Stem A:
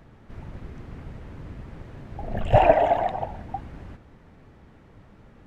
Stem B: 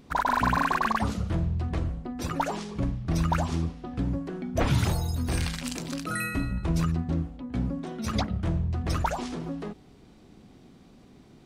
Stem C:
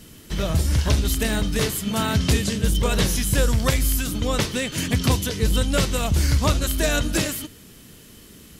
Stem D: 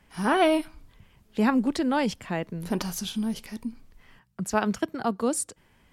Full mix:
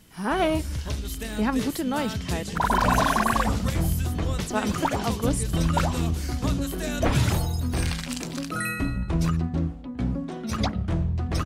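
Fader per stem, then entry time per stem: -13.0, +2.0, -10.5, -2.5 dB; 0.30, 2.45, 0.00, 0.00 s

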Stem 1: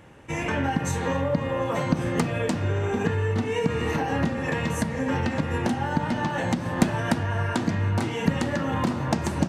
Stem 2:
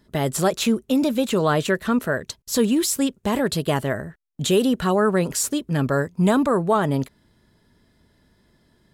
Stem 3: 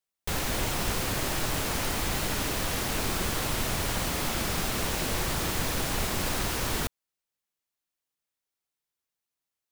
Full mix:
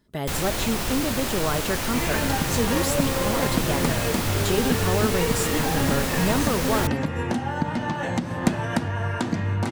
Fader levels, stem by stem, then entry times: -0.5, -6.5, +2.0 dB; 1.65, 0.00, 0.00 s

